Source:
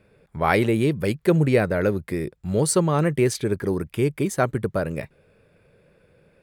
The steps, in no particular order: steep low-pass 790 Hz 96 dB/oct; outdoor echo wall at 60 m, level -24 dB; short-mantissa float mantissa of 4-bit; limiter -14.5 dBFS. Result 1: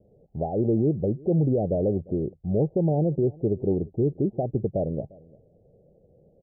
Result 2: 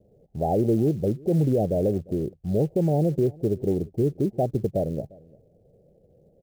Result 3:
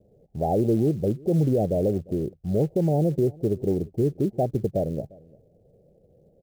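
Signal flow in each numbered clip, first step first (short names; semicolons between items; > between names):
limiter > outdoor echo > short-mantissa float > steep low-pass; steep low-pass > short-mantissa float > limiter > outdoor echo; steep low-pass > limiter > short-mantissa float > outdoor echo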